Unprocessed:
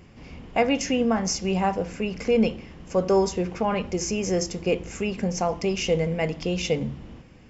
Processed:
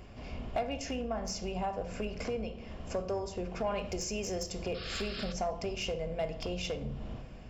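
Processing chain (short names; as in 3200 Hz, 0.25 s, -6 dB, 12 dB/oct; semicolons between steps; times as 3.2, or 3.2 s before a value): octaver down 2 oct, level -6 dB; 3.66–4.66 high shelf 2300 Hz +6.5 dB; 4.74–5.33 painted sound noise 1100–5400 Hz -35 dBFS; compressor 16:1, threshold -31 dBFS, peak gain reduction 16.5 dB; overloaded stage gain 27 dB; thirty-one-band EQ 160 Hz -6 dB, 315 Hz -8 dB, 630 Hz +8 dB, 2000 Hz -5 dB, 6300 Hz -5 dB; on a send at -9 dB: reverb RT60 0.70 s, pre-delay 3 ms; on the sum: soft clip -21.5 dBFS, distortion -26 dB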